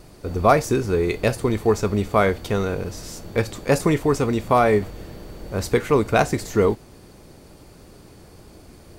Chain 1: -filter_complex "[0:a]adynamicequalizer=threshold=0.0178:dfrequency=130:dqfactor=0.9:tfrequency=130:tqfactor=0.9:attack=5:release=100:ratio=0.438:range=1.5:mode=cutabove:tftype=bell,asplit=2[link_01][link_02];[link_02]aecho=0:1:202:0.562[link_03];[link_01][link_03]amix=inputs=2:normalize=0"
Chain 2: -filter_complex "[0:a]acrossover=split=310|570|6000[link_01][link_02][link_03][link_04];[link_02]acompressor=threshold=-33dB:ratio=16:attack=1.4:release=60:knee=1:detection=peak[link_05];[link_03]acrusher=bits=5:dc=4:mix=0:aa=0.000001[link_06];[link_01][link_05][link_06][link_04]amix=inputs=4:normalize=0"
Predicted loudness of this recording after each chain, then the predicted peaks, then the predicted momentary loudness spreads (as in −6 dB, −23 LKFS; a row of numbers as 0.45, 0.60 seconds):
−21.0, −23.5 LKFS; −2.0, −4.0 dBFS; 11, 13 LU